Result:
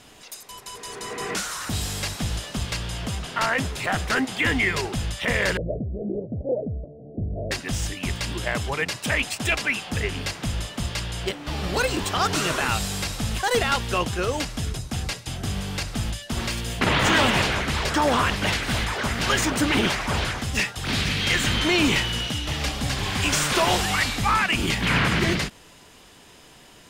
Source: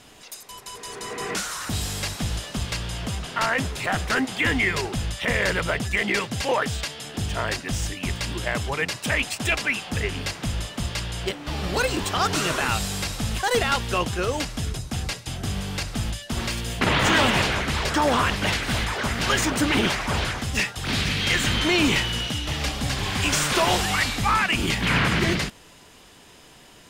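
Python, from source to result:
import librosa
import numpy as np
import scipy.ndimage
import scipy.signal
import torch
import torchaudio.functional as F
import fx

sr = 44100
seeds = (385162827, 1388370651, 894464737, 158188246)

y = fx.steep_lowpass(x, sr, hz=660.0, slope=72, at=(5.57, 7.51))
y = fx.end_taper(y, sr, db_per_s=470.0)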